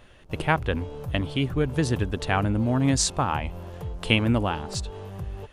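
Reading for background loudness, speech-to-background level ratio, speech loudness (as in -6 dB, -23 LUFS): -37.0 LUFS, 11.5 dB, -25.5 LUFS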